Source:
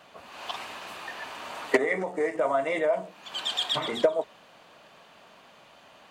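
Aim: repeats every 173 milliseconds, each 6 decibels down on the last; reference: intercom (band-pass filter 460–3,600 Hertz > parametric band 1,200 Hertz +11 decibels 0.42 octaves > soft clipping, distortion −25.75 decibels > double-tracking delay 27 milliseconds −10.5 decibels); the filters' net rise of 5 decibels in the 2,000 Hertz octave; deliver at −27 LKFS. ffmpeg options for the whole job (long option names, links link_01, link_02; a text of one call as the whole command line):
ffmpeg -i in.wav -filter_complex "[0:a]highpass=460,lowpass=3600,equalizer=frequency=1200:width_type=o:width=0.42:gain=11,equalizer=frequency=2000:width_type=o:gain=4.5,aecho=1:1:173|346|519|692|865|1038:0.501|0.251|0.125|0.0626|0.0313|0.0157,asoftclip=threshold=-7dB,asplit=2[link_01][link_02];[link_02]adelay=27,volume=-10.5dB[link_03];[link_01][link_03]amix=inputs=2:normalize=0,volume=-1dB" out.wav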